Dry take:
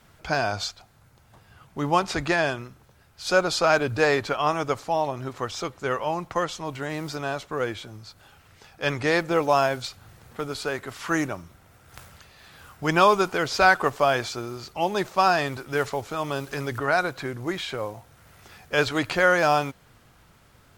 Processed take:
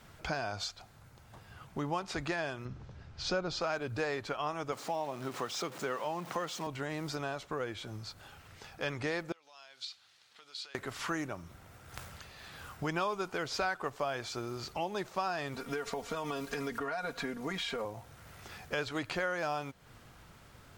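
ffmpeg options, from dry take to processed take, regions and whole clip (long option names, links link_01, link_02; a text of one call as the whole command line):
ffmpeg -i in.wav -filter_complex "[0:a]asettb=1/sr,asplit=3[link_01][link_02][link_03];[link_01]atrim=end=2.654[link_04];[link_02]atrim=start=2.65:end=3.61,asetpts=PTS-STARTPTS,afade=type=in:duration=0.004:curve=qsin,afade=type=out:start_time=0.956:duration=0.004:curve=qsin,lowpass=frequency=6200:width=0.5412,lowpass=frequency=6200:width=1.3066,lowshelf=frequency=300:gain=10.5[link_05];[link_03]atrim=start=3.606[link_06];[link_04][link_05]acrossfade=duration=0.004:curve1=hsin:curve2=qsin[link_07];[link_07][link_06]acrossfade=duration=0.004:curve1=qsin:curve2=hsin,asettb=1/sr,asplit=3[link_08][link_09][link_10];[link_08]atrim=end=4.724[link_11];[link_09]atrim=start=4.72:end=6.67,asetpts=PTS-STARTPTS,afade=type=in:duration=0.004:curve=qsin,afade=type=out:start_time=1.946:duration=0.004:curve=qsin,aeval=exprs='val(0)+0.5*0.0168*sgn(val(0))':channel_layout=same,highpass=frequency=150:width=0.5412,highpass=frequency=150:width=1.3066[link_12];[link_10]atrim=start=6.666[link_13];[link_11][link_12]acrossfade=duration=0.004:curve1=hsin:curve2=qsin[link_14];[link_14][link_13]acrossfade=duration=0.004:curve1=qsin:curve2=hsin,asettb=1/sr,asplit=3[link_15][link_16][link_17];[link_15]atrim=end=9.324[link_18];[link_16]atrim=start=9.32:end=10.75,asetpts=PTS-STARTPTS,afade=type=in:duration=0.004:curve=qsin,afade=type=out:start_time=1.426:duration=0.004:curve=qsin,acompressor=threshold=-34dB:ratio=10:attack=3.2:release=140:knee=1:detection=peak,bandpass=frequency=4000:width_type=q:width=1.8[link_19];[link_17]atrim=start=10.746[link_20];[link_18][link_19]acrossfade=duration=0.004:curve1=hsin:curve2=qsin[link_21];[link_21][link_20]acrossfade=duration=0.004:curve1=qsin:curve2=hsin,asettb=1/sr,asplit=3[link_22][link_23][link_24];[link_22]atrim=end=15.544[link_25];[link_23]atrim=start=15.54:end=17.85,asetpts=PTS-STARTPTS,afade=type=in:duration=0.004:curve=qsin,afade=type=out:start_time=2.306:duration=0.004:curve=qsin,aecho=1:1:4.3:0.9,atrim=end_sample=101871,acompressor=threshold=-24dB:ratio=6:attack=3.2:release=140:knee=1:detection=peak[link_26];[link_24]atrim=start=17.846[link_27];[link_25][link_26]acrossfade=duration=0.004:curve1=hsin:curve2=qsin[link_28];[link_28][link_27]acrossfade=duration=0.004:curve1=qsin:curve2=hsin,acompressor=threshold=-36dB:ratio=3,equalizer=frequency=12000:width=1.4:gain=-3.5" out.wav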